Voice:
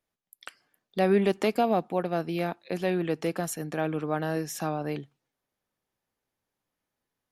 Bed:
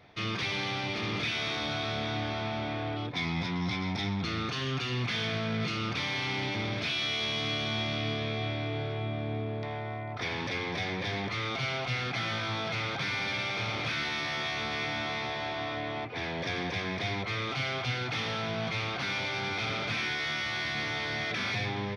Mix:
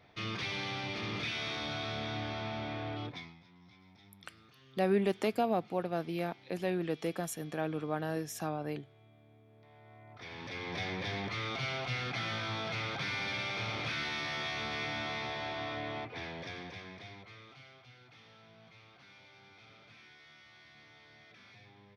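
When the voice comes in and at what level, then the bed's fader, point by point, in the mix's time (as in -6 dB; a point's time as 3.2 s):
3.80 s, -6.0 dB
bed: 3.08 s -5 dB
3.4 s -28 dB
9.45 s -28 dB
10.79 s -4 dB
15.96 s -4 dB
17.83 s -25.5 dB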